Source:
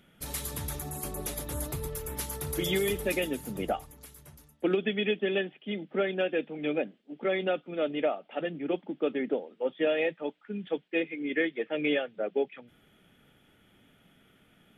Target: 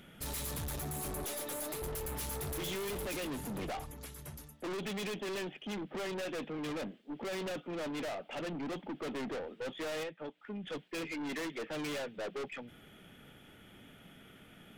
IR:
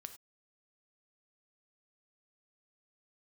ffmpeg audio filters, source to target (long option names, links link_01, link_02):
-filter_complex "[0:a]asettb=1/sr,asplit=3[link_01][link_02][link_03];[link_01]atrim=end=1.244[link_04];[link_02]atrim=start=1.24:end=1.82,asetpts=PTS-STARTPTS,afade=type=in:duration=0.004:curve=qsin,afade=type=out:start_time=0.576:duration=0.004:curve=qsin,highpass=340[link_05];[link_03]atrim=start=1.816[link_06];[link_04][link_05]acrossfade=duration=0.004:curve1=hsin:curve2=qsin[link_07];[link_07][link_06]acrossfade=duration=0.004:curve1=qsin:curve2=hsin,asettb=1/sr,asplit=3[link_08][link_09][link_10];[link_08]atrim=end=3.244[link_11];[link_09]atrim=start=3.24:end=4.19,asetpts=PTS-STARTPTS,afade=type=in:duration=0.004:curve=qsin,afade=type=out:start_time=0.946:duration=0.004:curve=qsin,highshelf=frequency=7600:gain=-7[link_12];[link_10]atrim=start=4.186[link_13];[link_11][link_12]acrossfade=duration=0.004:curve1=hsin:curve2=qsin[link_14];[link_14][link_13]acrossfade=duration=0.004:curve1=qsin:curve2=hsin,asettb=1/sr,asplit=3[link_15][link_16][link_17];[link_15]atrim=end=10.034[link_18];[link_16]atrim=start=10.03:end=10.68,asetpts=PTS-STARTPTS,afade=type=in:duration=0.004:curve=qsin,afade=type=out:start_time=0.646:duration=0.004:curve=qsin,acompressor=threshold=-42dB:ratio=4[link_19];[link_17]atrim=start=10.676[link_20];[link_18][link_19]acrossfade=duration=0.004:curve1=hsin:curve2=qsin[link_21];[link_21][link_20]acrossfade=duration=0.004:curve1=qsin:curve2=hsin,aeval=exprs='(tanh(141*val(0)+0.15)-tanh(0.15))/141':channel_layout=same,volume=6dB"